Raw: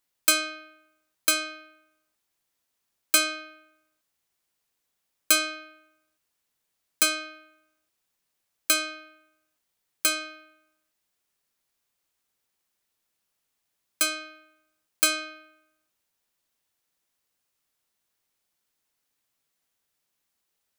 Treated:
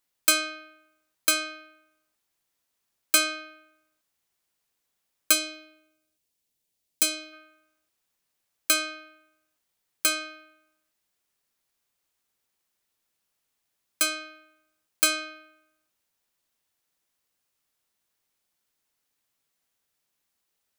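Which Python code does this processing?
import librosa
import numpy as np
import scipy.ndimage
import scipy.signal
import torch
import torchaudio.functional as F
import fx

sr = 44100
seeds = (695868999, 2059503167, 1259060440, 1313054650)

y = fx.peak_eq(x, sr, hz=1300.0, db=-12.0, octaves=1.4, at=(5.32, 7.32), fade=0.02)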